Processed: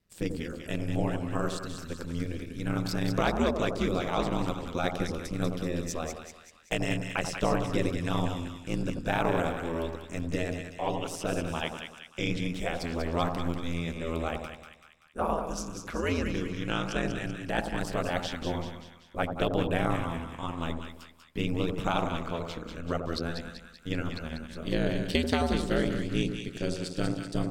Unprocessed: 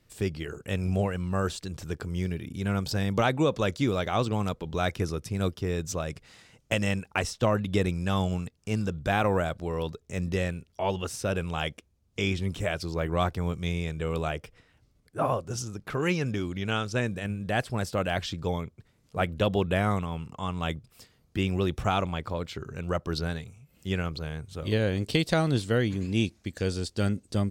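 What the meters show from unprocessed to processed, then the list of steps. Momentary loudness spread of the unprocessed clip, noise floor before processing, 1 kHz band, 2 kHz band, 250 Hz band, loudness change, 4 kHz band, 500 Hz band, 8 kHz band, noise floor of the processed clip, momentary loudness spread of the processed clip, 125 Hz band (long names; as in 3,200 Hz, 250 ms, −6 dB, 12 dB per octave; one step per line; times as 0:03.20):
9 LU, −66 dBFS, −1.5 dB, −2.0 dB, −1.0 dB, −2.0 dB, −1.5 dB, −2.0 dB, −1.5 dB, −53 dBFS, 9 LU, −4.5 dB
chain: noise gate −51 dBFS, range −8 dB
ring modulation 84 Hz
echo with a time of its own for lows and highs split 1,200 Hz, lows 88 ms, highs 192 ms, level −6 dB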